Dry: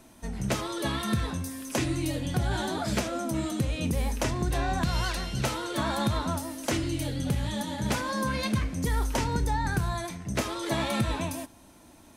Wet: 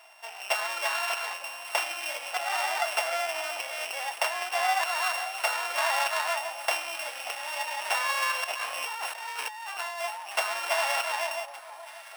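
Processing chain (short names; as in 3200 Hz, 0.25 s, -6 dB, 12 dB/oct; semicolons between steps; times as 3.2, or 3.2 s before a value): sample sorter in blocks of 16 samples; elliptic high-pass 700 Hz, stop band 80 dB; tilt -2 dB/oct; on a send: echo with dull and thin repeats by turns 0.583 s, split 1100 Hz, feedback 59%, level -12.5 dB; 8.44–10.02 on the sum: negative-ratio compressor -43 dBFS, ratio -1; gain +7.5 dB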